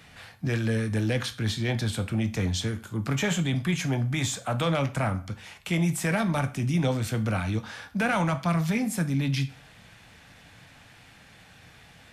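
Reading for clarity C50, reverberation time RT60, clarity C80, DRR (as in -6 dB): 15.0 dB, 0.40 s, 20.0 dB, 8.5 dB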